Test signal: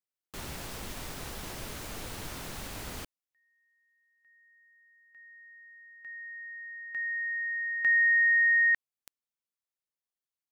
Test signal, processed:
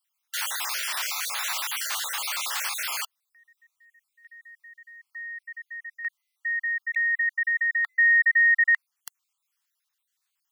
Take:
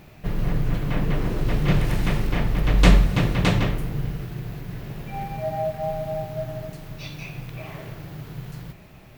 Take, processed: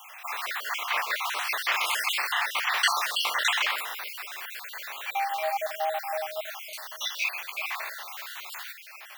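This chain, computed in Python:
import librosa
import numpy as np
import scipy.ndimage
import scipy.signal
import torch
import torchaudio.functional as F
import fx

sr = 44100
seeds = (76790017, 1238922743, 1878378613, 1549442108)

p1 = fx.spec_dropout(x, sr, seeds[0], share_pct=43)
p2 = scipy.signal.sosfilt(scipy.signal.butter(4, 960.0, 'highpass', fs=sr, output='sos'), p1)
p3 = fx.over_compress(p2, sr, threshold_db=-39.0, ratio=-1.0)
p4 = p2 + (p3 * librosa.db_to_amplitude(2.0))
y = p4 * librosa.db_to_amplitude(4.5)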